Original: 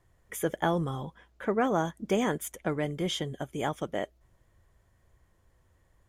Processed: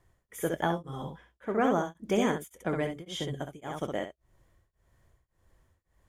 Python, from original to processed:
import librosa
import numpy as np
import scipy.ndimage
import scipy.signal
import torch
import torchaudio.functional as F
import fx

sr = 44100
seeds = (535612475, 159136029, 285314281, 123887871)

p1 = x + fx.room_early_taps(x, sr, ms=(23, 65), db=(-15.5, -5.5), dry=0)
y = p1 * np.abs(np.cos(np.pi * 1.8 * np.arange(len(p1)) / sr))